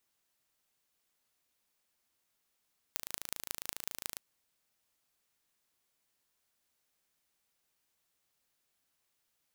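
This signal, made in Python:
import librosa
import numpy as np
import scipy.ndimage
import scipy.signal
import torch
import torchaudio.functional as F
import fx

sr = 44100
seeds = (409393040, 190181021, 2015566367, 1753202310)

y = fx.impulse_train(sr, length_s=1.23, per_s=27.3, accent_every=5, level_db=-7.0)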